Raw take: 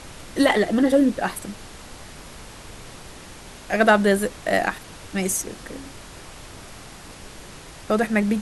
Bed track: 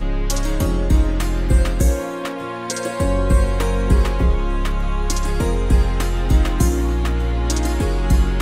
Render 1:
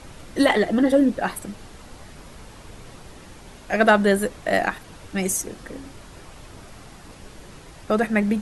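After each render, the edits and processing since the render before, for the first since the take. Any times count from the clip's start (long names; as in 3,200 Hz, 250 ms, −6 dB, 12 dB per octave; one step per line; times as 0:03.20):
broadband denoise 6 dB, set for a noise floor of −42 dBFS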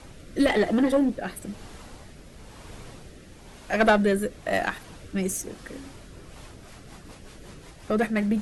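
one-sided soft clipper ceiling −13.5 dBFS
rotating-speaker cabinet horn 1 Hz, later 5.5 Hz, at 0:06.05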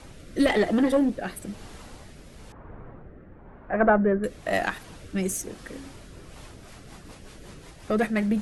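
0:02.52–0:04.24: low-pass filter 1,600 Hz 24 dB per octave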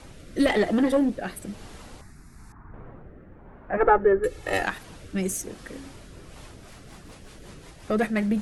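0:02.01–0:02.74: phaser with its sweep stopped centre 1,300 Hz, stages 4
0:03.77–0:04.63: comb filter 2.3 ms, depth 98%
0:06.68–0:07.46: hard clipping −39 dBFS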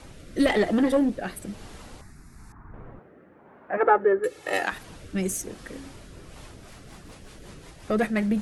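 0:02.99–0:04.72: Bessel high-pass filter 280 Hz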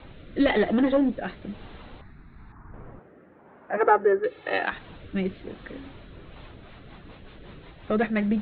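Butterworth low-pass 4,000 Hz 96 dB per octave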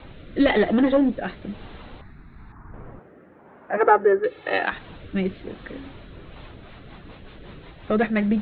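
level +3 dB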